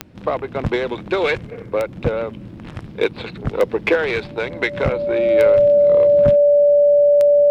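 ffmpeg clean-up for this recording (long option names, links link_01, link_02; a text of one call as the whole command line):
ffmpeg -i in.wav -af "adeclick=threshold=4,bandreject=frequency=580:width=30" out.wav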